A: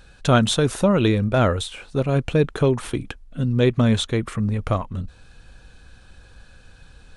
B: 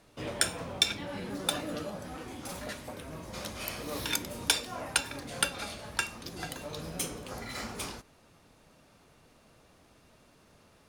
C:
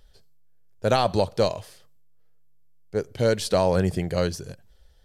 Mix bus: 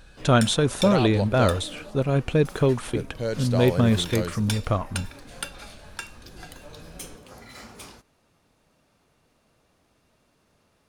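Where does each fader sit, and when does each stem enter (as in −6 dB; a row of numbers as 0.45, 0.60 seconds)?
−2.0, −5.0, −7.0 decibels; 0.00, 0.00, 0.00 seconds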